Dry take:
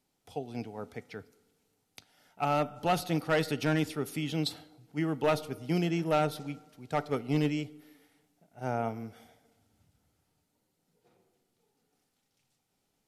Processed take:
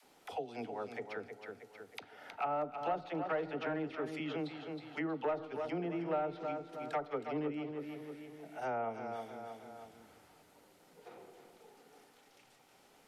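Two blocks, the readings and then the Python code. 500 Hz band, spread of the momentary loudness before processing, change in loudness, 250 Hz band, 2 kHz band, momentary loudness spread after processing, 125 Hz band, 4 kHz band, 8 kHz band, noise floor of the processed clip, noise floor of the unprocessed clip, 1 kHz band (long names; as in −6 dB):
−4.5 dB, 14 LU, −8.0 dB, −8.0 dB, −6.5 dB, 16 LU, −14.5 dB, −12.5 dB, below −15 dB, −65 dBFS, −79 dBFS, −4.5 dB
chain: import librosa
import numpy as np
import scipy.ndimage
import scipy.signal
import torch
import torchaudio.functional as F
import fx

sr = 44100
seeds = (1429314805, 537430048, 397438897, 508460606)

p1 = fx.env_lowpass_down(x, sr, base_hz=1300.0, full_db=-25.0)
p2 = fx.bass_treble(p1, sr, bass_db=-15, treble_db=-4)
p3 = fx.dispersion(p2, sr, late='lows', ms=43.0, hz=400.0)
p4 = p3 + fx.echo_feedback(p3, sr, ms=317, feedback_pct=30, wet_db=-9.5, dry=0)
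p5 = fx.band_squash(p4, sr, depth_pct=70)
y = p5 * 10.0 ** (-3.0 / 20.0)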